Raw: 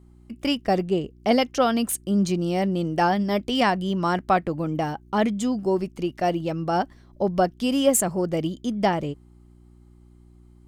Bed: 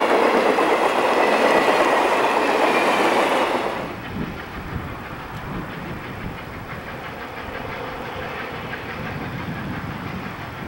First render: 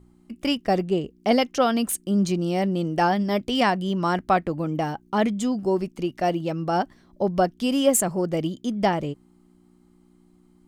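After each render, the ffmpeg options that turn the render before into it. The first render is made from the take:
-af "bandreject=f=60:t=h:w=4,bandreject=f=120:t=h:w=4"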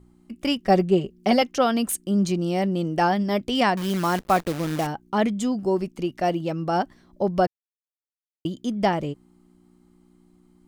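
-filter_complex "[0:a]asettb=1/sr,asplit=3[a][b][c];[a]atrim=end=0.634[d];[b]atrim=start=0.63:end=1.42,asetpts=PTS-STARTPTS,afade=t=in:d=0.004:c=qsin,afade=t=out:st=0.786:d=0.004:c=qsin,aecho=1:1:5.3:0.67,atrim=end_sample=34839[e];[c]atrim=start=1.416[f];[d][e]acrossfade=d=0.004:c1=hsin:c2=qsin[g];[g][f]acrossfade=d=0.004:c1=qsin:c2=hsin,asettb=1/sr,asplit=3[h][i][j];[h]atrim=end=3.774[k];[i]atrim=start=3.77:end=4.87,asetpts=PTS-STARTPTS,afade=t=in:d=0.004:c=qsin,afade=t=out:st=1.096:d=0.004:c=qsin,acrusher=bits=6:dc=4:mix=0:aa=0.000001[l];[j]atrim=start=4.866[m];[k][l]acrossfade=d=0.004:c1=hsin:c2=qsin[n];[n][m]acrossfade=d=0.004:c1=qsin:c2=hsin,asplit=3[o][p][q];[o]atrim=end=7.47,asetpts=PTS-STARTPTS,afade=t=out:st=7.466:d=0.004:c=hsin[r];[p]atrim=start=7.47:end=8.45,asetpts=PTS-STARTPTS,volume=0[s];[q]atrim=start=8.45,asetpts=PTS-STARTPTS,afade=t=in:d=0.004:c=hsin[t];[r][s][t]concat=n=3:v=0:a=1"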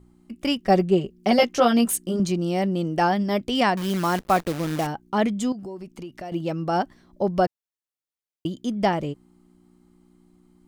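-filter_complex "[0:a]asettb=1/sr,asplit=3[a][b][c];[a]atrim=end=1.374[d];[b]atrim=start=1.37:end=2.2,asetpts=PTS-STARTPTS,afade=t=in:d=0.004:c=qsin,afade=t=out:st=0.826:d=0.004:c=qsin,asplit=2[e][f];[f]adelay=17,volume=-2dB[g];[e][g]amix=inputs=2:normalize=0,atrim=end_sample=36603[h];[c]atrim=start=2.196[i];[d][h]acrossfade=d=0.004:c1=hsin:c2=qsin[j];[j][i]acrossfade=d=0.004:c1=qsin:c2=hsin,asettb=1/sr,asplit=3[k][l][m];[k]atrim=end=5.524[n];[l]atrim=start=5.52:end=6.32,asetpts=PTS-STARTPTS,afade=t=in:d=0.004:c=qsin,afade=t=out:st=0.796:d=0.004:c=qsin,acompressor=threshold=-34dB:ratio=4:attack=3.2:release=140:knee=1:detection=peak[o];[m]atrim=start=6.316[p];[n][o]acrossfade=d=0.004:c1=hsin:c2=qsin[q];[q][p]acrossfade=d=0.004:c1=qsin:c2=hsin"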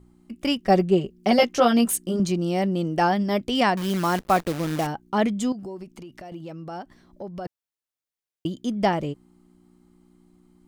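-filter_complex "[0:a]asplit=3[a][b][c];[a]afade=t=out:st=5.83:d=0.02[d];[b]acompressor=threshold=-38dB:ratio=2.5:attack=3.2:release=140:knee=1:detection=peak,afade=t=in:st=5.83:d=0.02,afade=t=out:st=7.45:d=0.02[e];[c]afade=t=in:st=7.45:d=0.02[f];[d][e][f]amix=inputs=3:normalize=0"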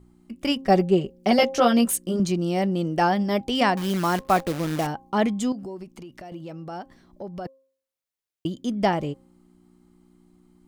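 -af "bandreject=f=267.1:t=h:w=4,bandreject=f=534.2:t=h:w=4,bandreject=f=801.3:t=h:w=4,bandreject=f=1.0684k:t=h:w=4"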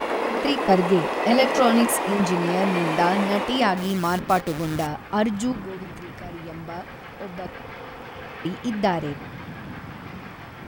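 -filter_complex "[1:a]volume=-8dB[a];[0:a][a]amix=inputs=2:normalize=0"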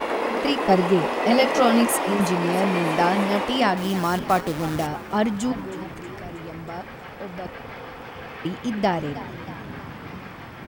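-filter_complex "[0:a]asplit=7[a][b][c][d][e][f][g];[b]adelay=318,afreqshift=59,volume=-15.5dB[h];[c]adelay=636,afreqshift=118,volume=-19.9dB[i];[d]adelay=954,afreqshift=177,volume=-24.4dB[j];[e]adelay=1272,afreqshift=236,volume=-28.8dB[k];[f]adelay=1590,afreqshift=295,volume=-33.2dB[l];[g]adelay=1908,afreqshift=354,volume=-37.7dB[m];[a][h][i][j][k][l][m]amix=inputs=7:normalize=0"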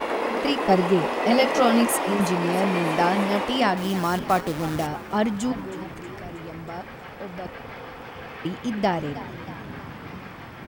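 -af "volume=-1dB"

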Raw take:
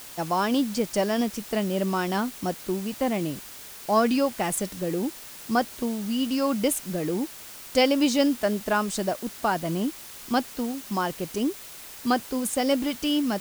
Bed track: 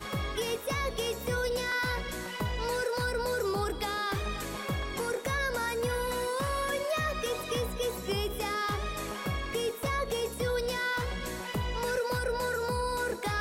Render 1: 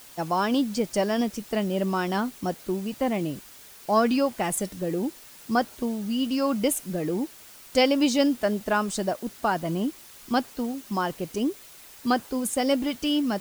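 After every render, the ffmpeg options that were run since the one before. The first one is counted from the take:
-af "afftdn=nr=6:nf=-43"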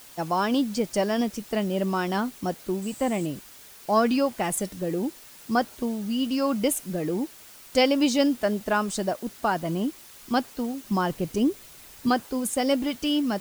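-filter_complex "[0:a]asettb=1/sr,asplit=3[a][b][c];[a]atrim=end=2.824[d];[b]atrim=start=2.82:end=3.26,asetpts=PTS-STARTPTS,afade=t=in:d=0.004:c=qsin,afade=t=out:st=0.436:d=0.004:c=qsin,equalizer=f=7.9k:w=4.3:g=15[e];[c]atrim=start=3.256[f];[d][e]acrossfade=d=0.004:c1=hsin:c2=qsin[g];[g][f]acrossfade=d=0.004:c1=qsin:c2=hsin,asettb=1/sr,asplit=3[h][i][j];[h]atrim=end=10.844[k];[i]atrim=start=10.84:end=12.09,asetpts=PTS-STARTPTS,afade=t=in:d=0.004:c=qsin,afade=t=out:st=1.246:d=0.004:c=qsin,lowshelf=f=220:g=9[l];[j]atrim=start=12.086[m];[k][l]acrossfade=d=0.004:c1=hsin:c2=qsin[n];[n][m]acrossfade=d=0.004:c1=qsin:c2=hsin"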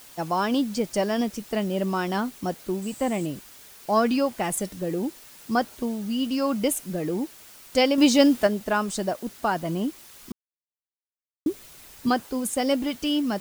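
-filter_complex "[0:a]asplit=5[a][b][c][d][e];[a]atrim=end=7.982[f];[b]atrim=start=7.978:end=8.472,asetpts=PTS-STARTPTS,volume=4.5dB[g];[c]atrim=start=8.468:end=10.32,asetpts=PTS-STARTPTS,afade=t=out:st=1.848:d=0.004:c=hsin[h];[d]atrim=start=10.32:end=11.46,asetpts=PTS-STARTPTS,volume=0[i];[e]atrim=start=11.46,asetpts=PTS-STARTPTS,afade=t=in:d=0.004:c=hsin[j];[f][g]acrossfade=d=0.004:c1=hsin:c2=hsin[k];[h][i][j]concat=n=3:v=0:a=1[l];[k][l]acrossfade=d=0.004:c1=hsin:c2=hsin"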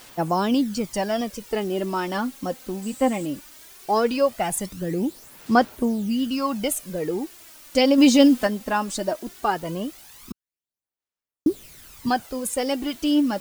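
-af "aphaser=in_gain=1:out_gain=1:delay=3.9:decay=0.51:speed=0.18:type=sinusoidal"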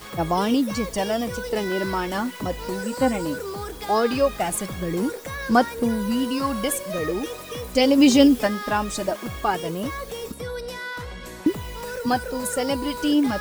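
-filter_complex "[1:a]volume=-1.5dB[a];[0:a][a]amix=inputs=2:normalize=0"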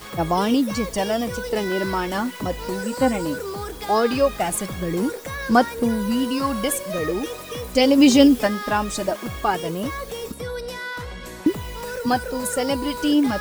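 -af "volume=1.5dB"

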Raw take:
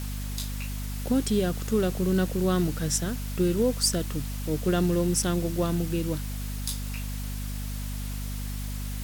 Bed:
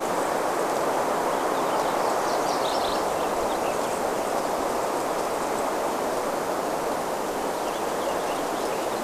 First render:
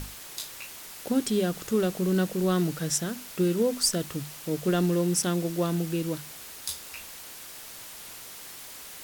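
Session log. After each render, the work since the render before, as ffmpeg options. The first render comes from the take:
-af "bandreject=f=50:t=h:w=6,bandreject=f=100:t=h:w=6,bandreject=f=150:t=h:w=6,bandreject=f=200:t=h:w=6,bandreject=f=250:t=h:w=6"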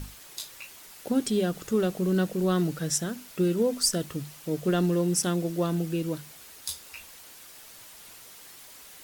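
-af "afftdn=nr=6:nf=-44"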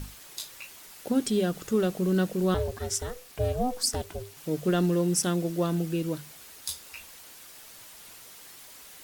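-filter_complex "[0:a]asettb=1/sr,asplit=3[a][b][c];[a]atrim=end=2.544[d];[b]atrim=start=2.54:end=4.37,asetpts=PTS-STARTPTS,afade=t=in:d=0.004:c=qsin,afade=t=out:st=1.826:d=0.004:c=qsin,aeval=exprs='val(0)*sin(2*PI*250*n/s)':c=same[e];[c]atrim=start=4.366[f];[d][e]acrossfade=d=0.004:c1=hsin:c2=qsin[g];[g][f]acrossfade=d=0.004:c1=qsin:c2=hsin"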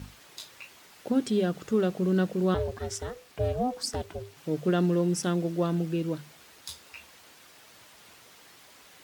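-af "highpass=67,equalizer=f=13k:w=0.39:g=-12"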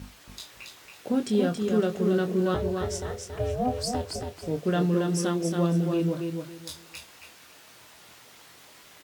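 -filter_complex "[0:a]asplit=2[a][b];[b]adelay=24,volume=-7dB[c];[a][c]amix=inputs=2:normalize=0,aecho=1:1:277|554|831:0.562|0.135|0.0324"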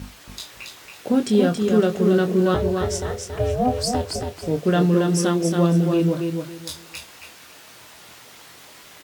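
-af "volume=6.5dB"

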